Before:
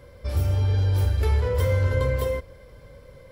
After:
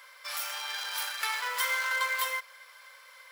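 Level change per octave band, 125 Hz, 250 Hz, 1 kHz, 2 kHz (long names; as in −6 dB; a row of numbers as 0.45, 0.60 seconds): below −40 dB, below −40 dB, +3.0 dB, +7.5 dB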